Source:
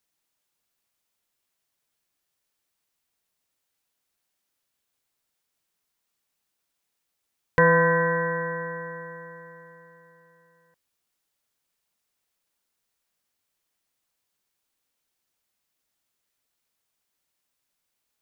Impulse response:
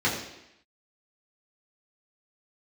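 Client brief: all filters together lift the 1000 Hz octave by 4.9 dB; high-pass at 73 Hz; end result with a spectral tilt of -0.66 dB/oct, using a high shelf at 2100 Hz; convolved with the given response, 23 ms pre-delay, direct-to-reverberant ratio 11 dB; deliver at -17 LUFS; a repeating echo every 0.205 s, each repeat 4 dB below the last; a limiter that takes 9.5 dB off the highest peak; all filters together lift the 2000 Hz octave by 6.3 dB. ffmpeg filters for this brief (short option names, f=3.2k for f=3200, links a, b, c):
-filter_complex "[0:a]highpass=73,equalizer=f=1k:t=o:g=4,equalizer=f=2k:t=o:g=9,highshelf=f=2.1k:g=-5,alimiter=limit=-12.5dB:level=0:latency=1,aecho=1:1:205|410|615|820|1025|1230|1435|1640|1845:0.631|0.398|0.25|0.158|0.0994|0.0626|0.0394|0.0249|0.0157,asplit=2[a][b];[1:a]atrim=start_sample=2205,adelay=23[c];[b][c]afir=irnorm=-1:irlink=0,volume=-24.5dB[d];[a][d]amix=inputs=2:normalize=0,volume=7dB"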